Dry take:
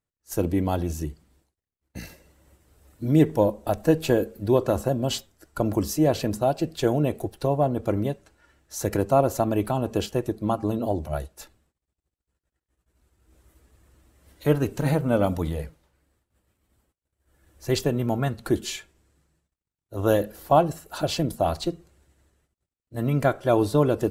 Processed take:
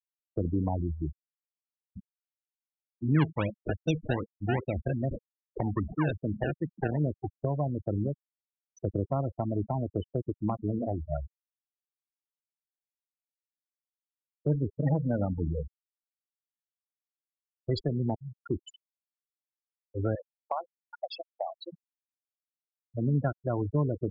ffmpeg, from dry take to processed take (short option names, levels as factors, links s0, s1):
-filter_complex "[0:a]asettb=1/sr,asplit=3[s0][s1][s2];[s0]atrim=end=1.994[s3];[s1]atrim=start=1.99:end=7.39,asetpts=PTS-STARTPTS,afade=t=in:d=0.004:c=qsin,afade=t=out:st=5.396:d=0.004:c=qsin,acrusher=samples=28:mix=1:aa=0.000001:lfo=1:lforange=28:lforate=2.5[s4];[s2]atrim=start=7.386[s5];[s3][s4]acrossfade=d=0.004:c1=hsin:c2=qsin[s6];[s6][s5]acrossfade=d=0.004:c1=qsin:c2=hsin,asettb=1/sr,asplit=3[s7][s8][s9];[s7]atrim=end=20.154[s10];[s8]atrim=start=20.15:end=21.72,asetpts=PTS-STARTPTS,afade=t=in:d=0.004:c=qsin,afade=t=out:st=1.566:d=0.004:c=qsin,highpass=740[s11];[s9]atrim=start=21.716[s12];[s10][s11]acrossfade=d=0.004:c1=hsin:c2=qsin[s13];[s13][s12]acrossfade=d=0.004:c1=qsin:c2=hsin,asplit=2[s14][s15];[s14]atrim=end=18.15,asetpts=PTS-STARTPTS,afade=t=out:st=18.146:d=0.004:c=hsin:silence=0.0891251[s16];[s15]atrim=start=18.15,asetpts=PTS-STARTPTS,afade=t=in:d=0.5:silence=0.0891251[s17];[s16][s17]concat=n=2:v=0:a=1,afftfilt=real='re*gte(hypot(re,im),0.126)':imag='im*gte(hypot(re,im),0.126)':win_size=1024:overlap=0.75,equalizer=f=1100:t=o:w=1.7:g=7.5,acrossover=split=220|3000[s18][s19][s20];[s19]acompressor=threshold=0.0316:ratio=6[s21];[s18][s21][s20]amix=inputs=3:normalize=0,volume=0.794"